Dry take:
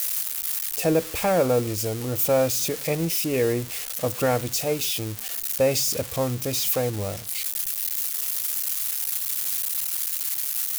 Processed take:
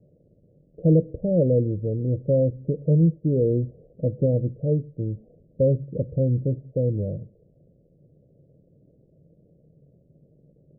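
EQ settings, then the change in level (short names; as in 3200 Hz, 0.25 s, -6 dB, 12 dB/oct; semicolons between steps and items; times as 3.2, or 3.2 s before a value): steep low-pass 580 Hz 72 dB/oct; bell 150 Hz +13 dB 0.62 oct; 0.0 dB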